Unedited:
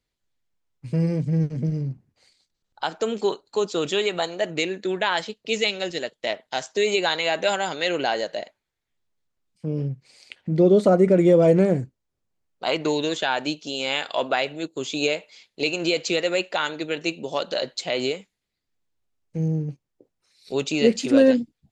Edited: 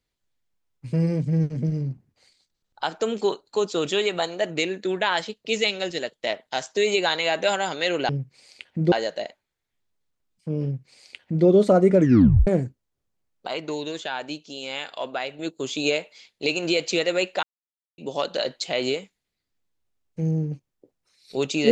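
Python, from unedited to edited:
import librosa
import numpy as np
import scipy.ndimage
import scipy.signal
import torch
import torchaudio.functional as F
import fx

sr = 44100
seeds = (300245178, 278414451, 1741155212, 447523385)

y = fx.edit(x, sr, fx.duplicate(start_s=9.8, length_s=0.83, to_s=8.09),
    fx.tape_stop(start_s=11.15, length_s=0.49),
    fx.clip_gain(start_s=12.65, length_s=1.91, db=-6.5),
    fx.silence(start_s=16.6, length_s=0.55), tone=tone)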